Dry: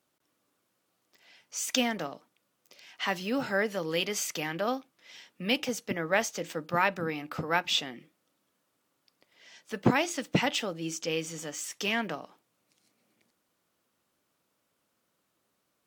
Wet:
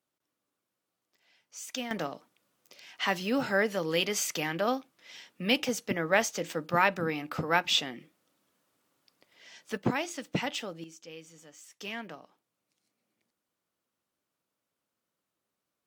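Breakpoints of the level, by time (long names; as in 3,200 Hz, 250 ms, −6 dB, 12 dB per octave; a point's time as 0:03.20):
−9 dB
from 0:01.91 +1.5 dB
from 0:09.77 −5 dB
from 0:10.84 −15 dB
from 0:11.81 −9 dB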